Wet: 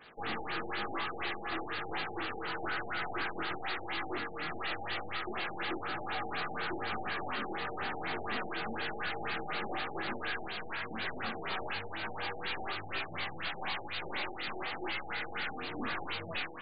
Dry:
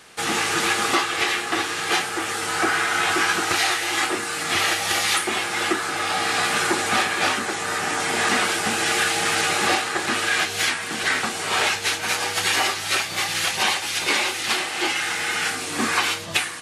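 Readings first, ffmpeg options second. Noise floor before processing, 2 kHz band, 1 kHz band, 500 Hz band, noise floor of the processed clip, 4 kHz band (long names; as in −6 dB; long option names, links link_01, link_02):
−30 dBFS, −15.5 dB, −13.5 dB, −12.5 dB, −43 dBFS, −18.5 dB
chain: -af "flanger=delay=18:depth=6.7:speed=1,aeval=exprs='(tanh(44.7*val(0)+0.6)-tanh(0.6))/44.7':channel_layout=same,afftfilt=real='re*lt(b*sr/1024,830*pow(4900/830,0.5+0.5*sin(2*PI*4.1*pts/sr)))':imag='im*lt(b*sr/1024,830*pow(4900/830,0.5+0.5*sin(2*PI*4.1*pts/sr)))':win_size=1024:overlap=0.75"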